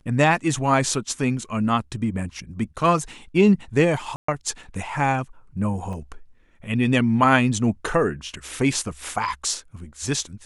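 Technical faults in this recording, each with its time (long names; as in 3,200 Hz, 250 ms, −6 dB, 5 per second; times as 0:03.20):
0:04.16–0:04.28: drop-out 124 ms
0:05.93: drop-out 3.4 ms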